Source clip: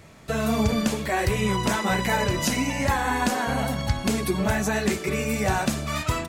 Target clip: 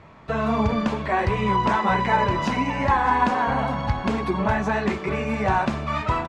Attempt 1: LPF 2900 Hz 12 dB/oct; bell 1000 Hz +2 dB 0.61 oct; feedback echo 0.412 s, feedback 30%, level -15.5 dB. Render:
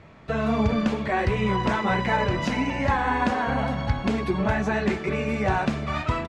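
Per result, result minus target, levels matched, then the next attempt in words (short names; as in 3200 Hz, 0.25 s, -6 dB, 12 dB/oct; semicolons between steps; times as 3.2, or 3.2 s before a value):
echo 0.209 s early; 1000 Hz band -3.0 dB
LPF 2900 Hz 12 dB/oct; bell 1000 Hz +2 dB 0.61 oct; feedback echo 0.621 s, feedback 30%, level -15.5 dB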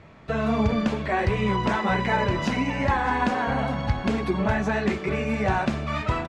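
1000 Hz band -3.0 dB
LPF 2900 Hz 12 dB/oct; bell 1000 Hz +9 dB 0.61 oct; feedback echo 0.621 s, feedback 30%, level -15.5 dB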